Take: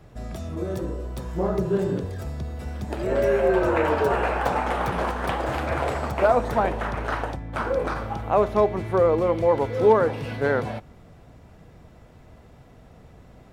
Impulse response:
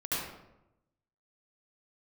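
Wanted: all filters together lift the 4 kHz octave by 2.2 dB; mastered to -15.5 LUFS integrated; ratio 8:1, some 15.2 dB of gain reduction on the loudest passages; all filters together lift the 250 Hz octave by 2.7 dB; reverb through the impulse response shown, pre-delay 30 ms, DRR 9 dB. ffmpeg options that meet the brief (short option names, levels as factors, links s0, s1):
-filter_complex "[0:a]equalizer=f=250:t=o:g=4,equalizer=f=4000:t=o:g=3,acompressor=threshold=0.0447:ratio=8,asplit=2[s0][s1];[1:a]atrim=start_sample=2205,adelay=30[s2];[s1][s2]afir=irnorm=-1:irlink=0,volume=0.168[s3];[s0][s3]amix=inputs=2:normalize=0,volume=5.96"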